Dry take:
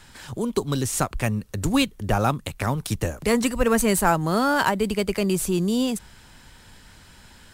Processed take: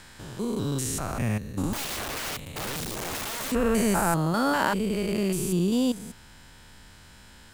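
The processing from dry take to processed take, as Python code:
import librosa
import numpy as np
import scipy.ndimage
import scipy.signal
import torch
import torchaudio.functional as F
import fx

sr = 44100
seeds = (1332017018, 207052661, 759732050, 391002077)

y = fx.spec_steps(x, sr, hold_ms=200)
y = fx.overflow_wrap(y, sr, gain_db=28.0, at=(1.73, 3.52))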